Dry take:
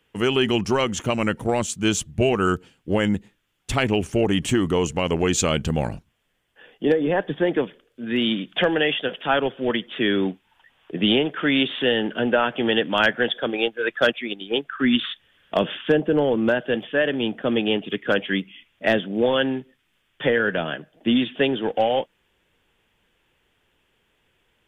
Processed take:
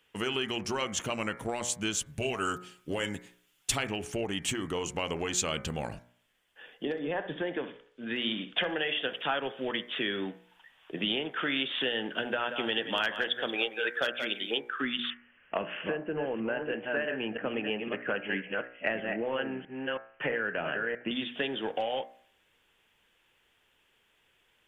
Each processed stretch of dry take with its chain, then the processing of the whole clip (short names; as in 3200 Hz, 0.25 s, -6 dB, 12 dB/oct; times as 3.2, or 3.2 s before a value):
2.06–3.78 high shelf 3800 Hz +8.5 dB + comb 7.3 ms, depth 43%
6.85–9.03 air absorption 64 m + flutter echo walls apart 11 m, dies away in 0.27 s
12.19–14.58 high shelf 5100 Hz +6.5 dB + echo 0.178 s -12 dB
15.1–21.11 reverse delay 0.325 s, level -6.5 dB + steep low-pass 2900 Hz 96 dB/oct
whole clip: compressor, threshold -24 dBFS; low shelf 490 Hz -9 dB; de-hum 60.26 Hz, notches 39